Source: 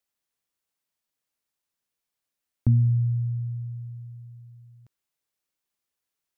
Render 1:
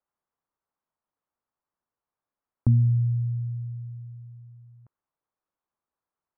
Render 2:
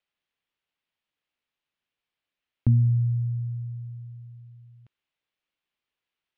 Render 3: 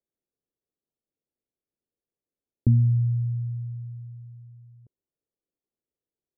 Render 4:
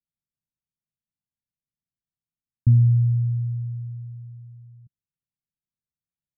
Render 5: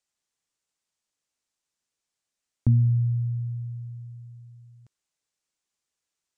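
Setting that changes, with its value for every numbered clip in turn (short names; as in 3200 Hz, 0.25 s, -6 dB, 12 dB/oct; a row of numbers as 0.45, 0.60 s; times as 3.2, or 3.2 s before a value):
synth low-pass, frequency: 1100, 3000, 430, 160, 7500 Hz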